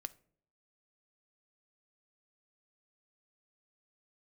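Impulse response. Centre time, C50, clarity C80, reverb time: 2 ms, 20.5 dB, 25.5 dB, 0.60 s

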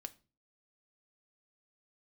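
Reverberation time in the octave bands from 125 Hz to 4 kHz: 0.50 s, 0.50 s, 0.40 s, 0.30 s, 0.30 s, 0.30 s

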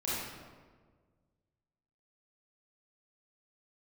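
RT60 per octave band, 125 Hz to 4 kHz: 2.2 s, 1.8 s, 1.7 s, 1.4 s, 1.2 s, 0.90 s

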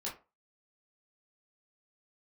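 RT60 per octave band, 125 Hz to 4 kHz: 0.25 s, 0.30 s, 0.30 s, 0.30 s, 0.25 s, 0.15 s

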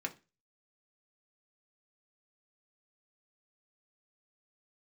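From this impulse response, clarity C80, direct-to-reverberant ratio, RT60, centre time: 24.5 dB, 1.5 dB, 0.30 s, 6 ms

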